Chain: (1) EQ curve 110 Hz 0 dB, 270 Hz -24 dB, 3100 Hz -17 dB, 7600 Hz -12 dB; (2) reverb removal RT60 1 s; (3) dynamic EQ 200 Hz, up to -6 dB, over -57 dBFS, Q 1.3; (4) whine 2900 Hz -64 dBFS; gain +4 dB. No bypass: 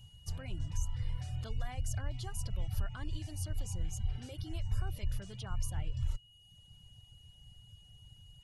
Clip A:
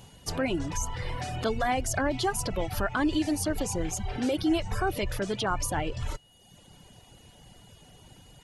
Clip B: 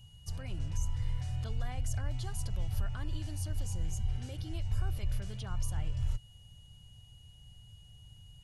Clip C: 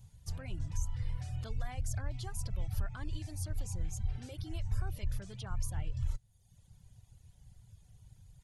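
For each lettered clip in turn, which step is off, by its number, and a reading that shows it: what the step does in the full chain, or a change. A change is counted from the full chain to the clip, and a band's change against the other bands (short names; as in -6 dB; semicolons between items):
1, 125 Hz band -18.0 dB; 2, loudness change +2.5 LU; 4, 4 kHz band -3.5 dB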